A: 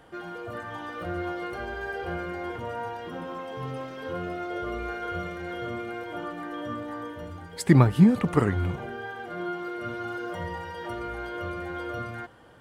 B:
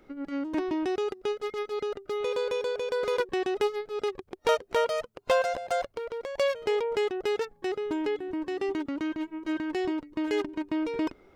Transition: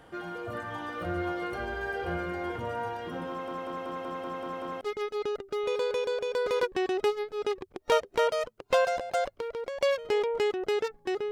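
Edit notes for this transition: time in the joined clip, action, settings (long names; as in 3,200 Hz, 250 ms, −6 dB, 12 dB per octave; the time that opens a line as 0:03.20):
A
0:03.29: stutter in place 0.19 s, 8 plays
0:04.81: continue with B from 0:01.38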